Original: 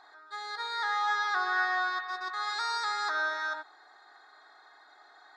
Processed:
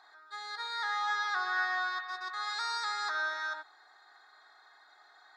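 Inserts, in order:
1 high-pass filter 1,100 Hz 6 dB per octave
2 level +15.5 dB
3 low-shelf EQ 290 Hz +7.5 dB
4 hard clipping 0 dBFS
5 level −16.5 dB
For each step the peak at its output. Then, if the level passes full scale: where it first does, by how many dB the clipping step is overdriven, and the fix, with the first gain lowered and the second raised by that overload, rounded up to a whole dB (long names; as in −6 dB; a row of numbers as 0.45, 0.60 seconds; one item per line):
−19.0, −3.5, −3.5, −3.5, −20.0 dBFS
no step passes full scale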